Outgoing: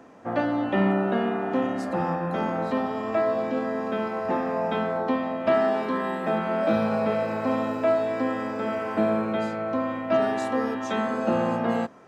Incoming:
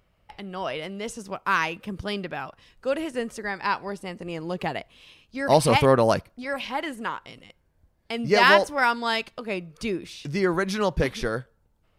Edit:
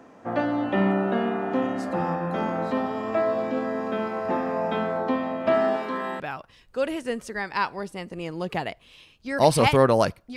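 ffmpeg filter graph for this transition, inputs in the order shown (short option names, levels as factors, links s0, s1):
-filter_complex "[0:a]asettb=1/sr,asplit=3[s0][s1][s2];[s0]atrim=end=5.764[s3];[s1]atrim=start=5.76:end=6.2,asetpts=PTS-STARTPTS,afade=t=in:d=0.004:c=qsin,afade=t=out:st=0.436:d=0.004:c=qsin,lowshelf=f=420:g=-7[s4];[s2]atrim=start=6.196[s5];[s3][s4]acrossfade=d=0.004:c1=hsin:c2=qsin[s6];[s6][s5]acrossfade=d=0.004:c1=qsin:c2=hsin,apad=whole_dur=10.36,atrim=end=10.36,atrim=end=6.202[s7];[1:a]atrim=start=2.288:end=6.45[s8];[s7][s8]acrossfade=d=0.004:c1=hsin:c2=hsin"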